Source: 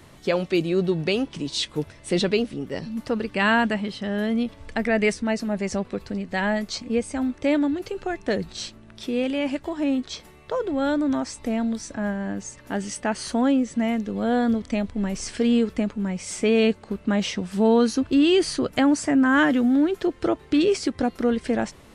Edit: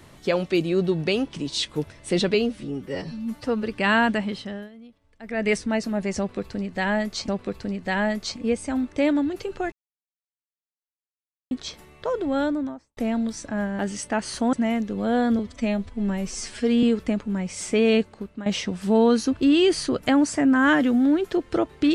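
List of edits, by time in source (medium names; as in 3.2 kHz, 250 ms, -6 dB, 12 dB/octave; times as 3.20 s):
2.34–3.22 s: stretch 1.5×
3.91–5.10 s: dip -22 dB, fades 0.34 s
5.74–6.84 s: loop, 2 plays
8.18–9.97 s: mute
10.80–11.43 s: studio fade out
12.25–12.72 s: delete
13.46–13.71 s: delete
14.57–15.53 s: stretch 1.5×
16.67–17.16 s: fade out linear, to -15.5 dB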